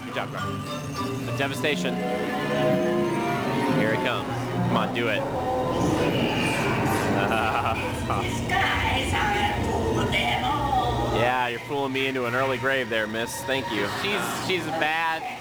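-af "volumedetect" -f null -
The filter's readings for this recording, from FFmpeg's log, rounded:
mean_volume: -24.9 dB
max_volume: -9.2 dB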